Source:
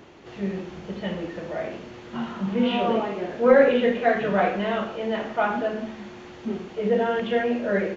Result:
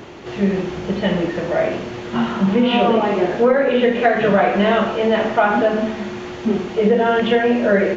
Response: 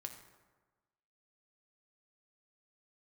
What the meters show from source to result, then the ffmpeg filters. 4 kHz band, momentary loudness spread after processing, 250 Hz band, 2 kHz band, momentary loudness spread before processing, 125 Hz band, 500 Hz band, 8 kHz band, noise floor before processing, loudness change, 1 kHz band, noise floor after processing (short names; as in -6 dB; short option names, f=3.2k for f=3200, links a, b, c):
+9.0 dB, 9 LU, +8.5 dB, +7.0 dB, 16 LU, +10.0 dB, +6.5 dB, n/a, -43 dBFS, +6.5 dB, +7.5 dB, -31 dBFS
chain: -filter_complex "[0:a]acompressor=threshold=-22dB:ratio=10,asplit=2[a][b];[1:a]atrim=start_sample=2205[c];[b][c]afir=irnorm=-1:irlink=0,volume=1dB[d];[a][d]amix=inputs=2:normalize=0,volume=7dB"